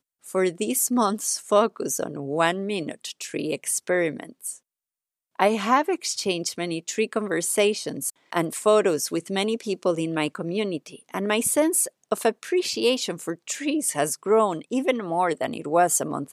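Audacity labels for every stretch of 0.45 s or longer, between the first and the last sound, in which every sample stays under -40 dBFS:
4.560000	5.390000	silence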